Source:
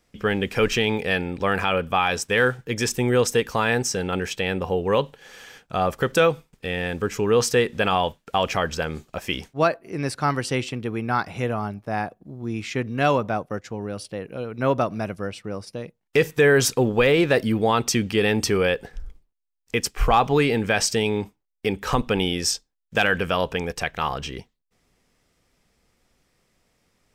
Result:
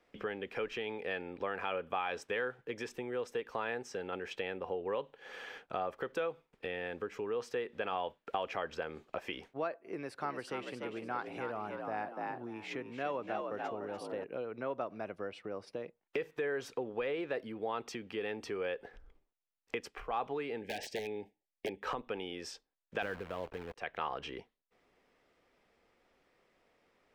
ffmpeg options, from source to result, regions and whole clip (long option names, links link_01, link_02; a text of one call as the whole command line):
ffmpeg -i in.wav -filter_complex "[0:a]asettb=1/sr,asplit=3[link_01][link_02][link_03];[link_01]atrim=end=9.934[link_04];[link_02]atrim=start=9.93:end=14.24,asetpts=PTS-STARTPTS,afade=type=in:duration=0.004:curve=qsin,afade=type=out:start_time=4.306:duration=0.004:curve=qsin,equalizer=frequency=13000:width_type=o:width=0.97:gain=8.5,asplit=5[link_05][link_06][link_07][link_08][link_09];[link_06]adelay=293,afreqshift=60,volume=-7dB[link_10];[link_07]adelay=586,afreqshift=120,volume=-16.1dB[link_11];[link_08]adelay=879,afreqshift=180,volume=-25.2dB[link_12];[link_09]adelay=1172,afreqshift=240,volume=-34.4dB[link_13];[link_05][link_10][link_11][link_12][link_13]amix=inputs=5:normalize=0,atrim=end_sample=190071[link_14];[link_03]atrim=start=14.236[link_15];[link_04][link_14]acrossfade=duration=0.004:curve1=hsin:curve2=qsin[link_16];[link_16][link_15]acrossfade=duration=0.004:curve1=qsin:curve2=hsin,asettb=1/sr,asplit=3[link_17][link_18][link_19];[link_17]atrim=end=20.614[link_20];[link_18]atrim=start=20.61:end=21.81,asetpts=PTS-STARTPTS,afade=type=in:duration=0.004:curve=qsin,afade=type=out:start_time=1.196:duration=0.004:curve=qsin,aeval=exprs='(mod(5.01*val(0)+1,2)-1)/5.01':channel_layout=same,asuperstop=centerf=1200:order=12:qfactor=1.6[link_21];[link_19]atrim=start=21.806[link_22];[link_20][link_21]acrossfade=duration=0.004:curve1=hsin:curve2=qsin[link_23];[link_23][link_22]acrossfade=duration=0.004:curve1=qsin:curve2=hsin,asettb=1/sr,asplit=3[link_24][link_25][link_26];[link_24]atrim=end=23.024[link_27];[link_25]atrim=start=23.02:end=23.76,asetpts=PTS-STARTPTS,afade=type=in:duration=0.004:curve=qsin,afade=type=out:start_time=0.736:duration=0.004:curve=qsin,aemphasis=mode=reproduction:type=riaa,acrusher=bits=5:dc=4:mix=0:aa=0.000001[link_28];[link_26]atrim=start=23.756[link_29];[link_27][link_28]acrossfade=duration=0.004:curve1=hsin:curve2=qsin[link_30];[link_30][link_29]acrossfade=duration=0.004:curve1=qsin:curve2=hsin,lowshelf=frequency=420:gain=9,acompressor=threshold=-30dB:ratio=5,acrossover=split=340 3600:gain=0.0891 1 0.158[link_31][link_32][link_33];[link_31][link_32][link_33]amix=inputs=3:normalize=0,volume=-2dB" out.wav